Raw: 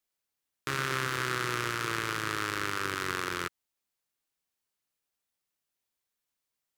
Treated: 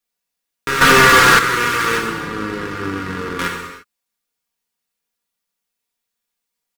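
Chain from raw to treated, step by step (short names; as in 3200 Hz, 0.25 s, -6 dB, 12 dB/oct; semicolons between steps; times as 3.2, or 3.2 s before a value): 1.98–3.39 EQ curve 300 Hz 0 dB, 500 Hz -6 dB, 11000 Hz -23 dB; sample leveller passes 2; non-linear reverb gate 0.37 s falling, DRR -0.5 dB; 0.81–1.39 sample leveller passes 3; comb 4.2 ms, depth 66%; gain +5 dB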